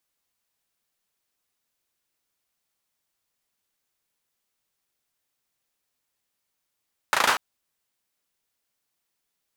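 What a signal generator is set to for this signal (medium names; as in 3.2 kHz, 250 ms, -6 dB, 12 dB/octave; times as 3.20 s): hand clap length 0.24 s, bursts 5, apart 36 ms, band 1.1 kHz, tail 0.42 s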